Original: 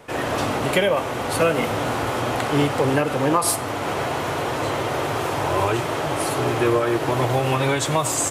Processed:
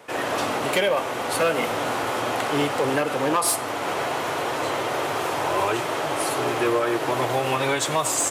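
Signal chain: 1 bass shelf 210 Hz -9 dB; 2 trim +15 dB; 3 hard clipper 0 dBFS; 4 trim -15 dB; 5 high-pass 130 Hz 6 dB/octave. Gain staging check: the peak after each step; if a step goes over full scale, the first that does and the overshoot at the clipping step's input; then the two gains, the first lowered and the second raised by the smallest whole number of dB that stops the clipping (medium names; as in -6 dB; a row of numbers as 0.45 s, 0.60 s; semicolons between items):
-6.5 dBFS, +8.5 dBFS, 0.0 dBFS, -15.0 dBFS, -12.5 dBFS; step 2, 8.5 dB; step 2 +6 dB, step 4 -6 dB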